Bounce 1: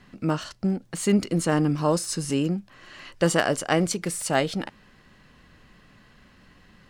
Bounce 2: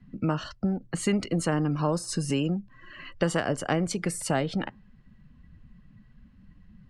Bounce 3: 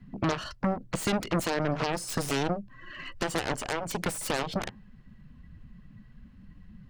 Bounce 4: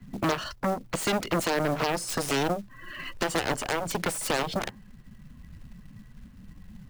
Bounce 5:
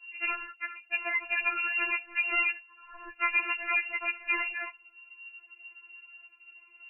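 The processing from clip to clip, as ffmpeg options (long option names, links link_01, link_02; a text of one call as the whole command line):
ffmpeg -i in.wav -filter_complex "[0:a]afftdn=noise_reduction=18:noise_floor=-44,bass=frequency=250:gain=5,treble=frequency=4000:gain=-6,acrossover=split=83|560[link_01][link_02][link_03];[link_01]acompressor=threshold=-48dB:ratio=4[link_04];[link_02]acompressor=threshold=-29dB:ratio=4[link_05];[link_03]acompressor=threshold=-31dB:ratio=4[link_06];[link_04][link_05][link_06]amix=inputs=3:normalize=0,volume=2.5dB" out.wav
ffmpeg -i in.wav -af "alimiter=limit=-17dB:level=0:latency=1:release=332,aeval=exprs='0.141*(cos(1*acos(clip(val(0)/0.141,-1,1)))-cos(1*PI/2))+0.0562*(cos(7*acos(clip(val(0)/0.141,-1,1)))-cos(7*PI/2))+0.0112*(cos(8*acos(clip(val(0)/0.141,-1,1)))-cos(8*PI/2))':channel_layout=same,volume=-2dB" out.wav
ffmpeg -i in.wav -filter_complex "[0:a]acrossover=split=270[link_01][link_02];[link_01]alimiter=level_in=6dB:limit=-24dB:level=0:latency=1:release=359,volume=-6dB[link_03];[link_03][link_02]amix=inputs=2:normalize=0,acrusher=bits=5:mode=log:mix=0:aa=0.000001,volume=3dB" out.wav
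ffmpeg -i in.wav -af "bandreject=frequency=50:width_type=h:width=6,bandreject=frequency=100:width_type=h:width=6,bandreject=frequency=150:width_type=h:width=6,lowpass=frequency=2500:width_type=q:width=0.5098,lowpass=frequency=2500:width_type=q:width=0.6013,lowpass=frequency=2500:width_type=q:width=0.9,lowpass=frequency=2500:width_type=q:width=2.563,afreqshift=-2900,afftfilt=real='re*4*eq(mod(b,16),0)':imag='im*4*eq(mod(b,16),0)':win_size=2048:overlap=0.75" out.wav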